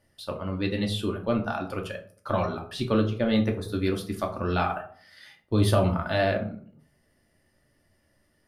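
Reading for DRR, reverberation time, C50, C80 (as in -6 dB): 1.5 dB, 0.50 s, 11.0 dB, 15.0 dB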